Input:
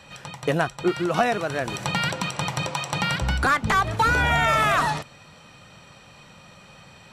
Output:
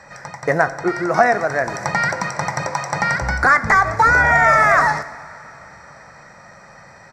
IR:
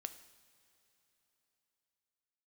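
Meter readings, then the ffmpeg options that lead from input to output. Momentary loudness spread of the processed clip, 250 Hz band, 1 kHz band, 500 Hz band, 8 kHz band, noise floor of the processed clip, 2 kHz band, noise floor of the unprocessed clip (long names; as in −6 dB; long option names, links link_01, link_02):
12 LU, +1.0 dB, +7.0 dB, +6.5 dB, +2.5 dB, −44 dBFS, +9.0 dB, −49 dBFS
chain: -filter_complex "[0:a]firequalizer=gain_entry='entry(300,0);entry(660,8);entry(1100,5);entry(2000,11);entry(2900,-19);entry(5100,6);entry(9800,-7)':delay=0.05:min_phase=1,asplit=2[link_01][link_02];[1:a]atrim=start_sample=2205,asetrate=33516,aresample=44100[link_03];[link_02][link_03]afir=irnorm=-1:irlink=0,volume=9dB[link_04];[link_01][link_04]amix=inputs=2:normalize=0,volume=-9.5dB"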